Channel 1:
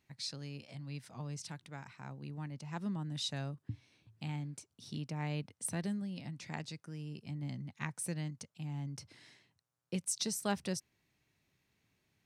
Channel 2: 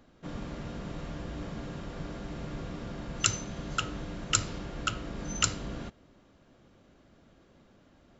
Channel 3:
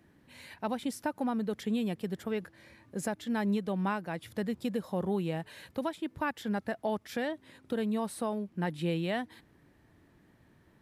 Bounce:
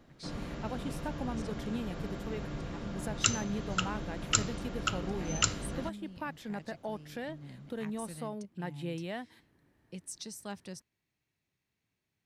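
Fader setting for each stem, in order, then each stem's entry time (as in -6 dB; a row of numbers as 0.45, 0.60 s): -7.5, -1.0, -6.5 dB; 0.00, 0.00, 0.00 s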